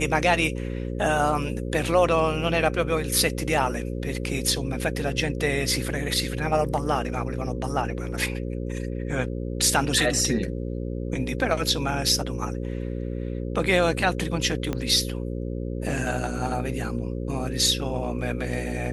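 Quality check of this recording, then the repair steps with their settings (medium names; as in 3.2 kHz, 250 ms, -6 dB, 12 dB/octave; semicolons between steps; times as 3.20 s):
buzz 60 Hz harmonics 9 -30 dBFS
14.73 s: pop -14 dBFS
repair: de-click; de-hum 60 Hz, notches 9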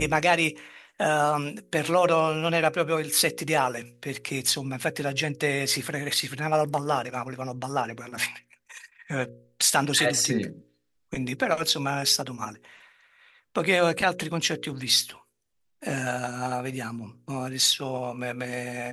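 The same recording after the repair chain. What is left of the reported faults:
14.73 s: pop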